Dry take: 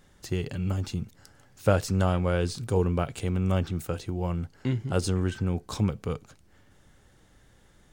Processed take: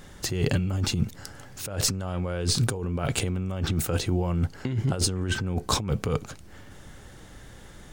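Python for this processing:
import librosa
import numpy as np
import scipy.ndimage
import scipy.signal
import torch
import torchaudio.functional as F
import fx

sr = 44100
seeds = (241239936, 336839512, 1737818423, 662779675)

y = fx.over_compress(x, sr, threshold_db=-33.0, ratio=-1.0)
y = y * 10.0 ** (6.5 / 20.0)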